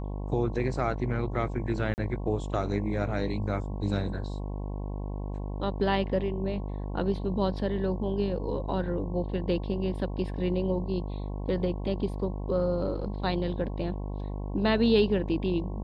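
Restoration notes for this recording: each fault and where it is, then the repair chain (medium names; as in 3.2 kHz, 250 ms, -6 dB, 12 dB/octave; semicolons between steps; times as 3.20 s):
buzz 50 Hz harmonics 22 -34 dBFS
1.94–1.98 s: dropout 39 ms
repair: de-hum 50 Hz, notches 22; interpolate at 1.94 s, 39 ms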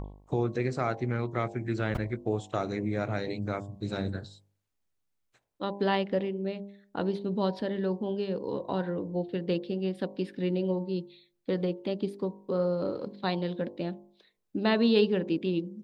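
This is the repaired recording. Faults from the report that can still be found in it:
nothing left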